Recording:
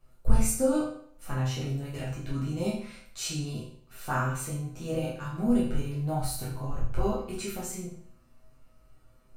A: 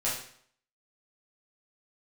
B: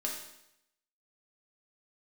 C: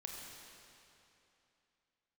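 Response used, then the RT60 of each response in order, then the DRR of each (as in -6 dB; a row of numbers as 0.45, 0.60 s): A; 0.60, 0.80, 2.9 s; -8.5, -2.5, -1.0 dB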